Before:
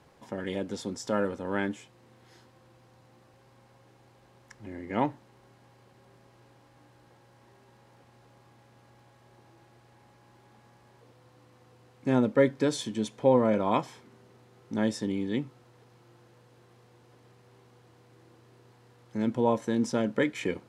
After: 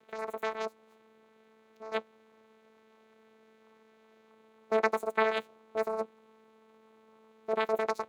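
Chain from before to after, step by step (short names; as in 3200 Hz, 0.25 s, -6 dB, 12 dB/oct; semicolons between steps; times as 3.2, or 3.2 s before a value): bell 2200 Hz -11 dB 0.25 oct; vocoder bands 8, saw 86 Hz; wide varispeed 2.56×; gain -2.5 dB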